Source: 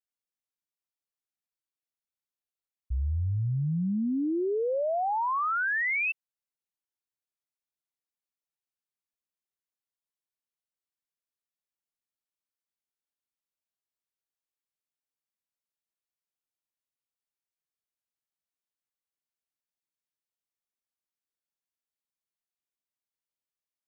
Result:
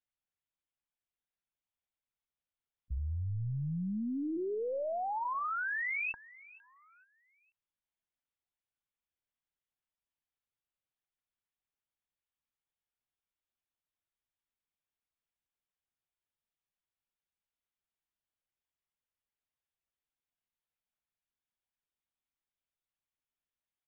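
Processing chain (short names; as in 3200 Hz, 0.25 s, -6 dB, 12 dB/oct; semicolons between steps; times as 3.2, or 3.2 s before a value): limiter -32 dBFS, peak gain reduction 7 dB; on a send: feedback echo 0.462 s, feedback 37%, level -21 dB; on the sum: LPC vocoder at 8 kHz pitch kept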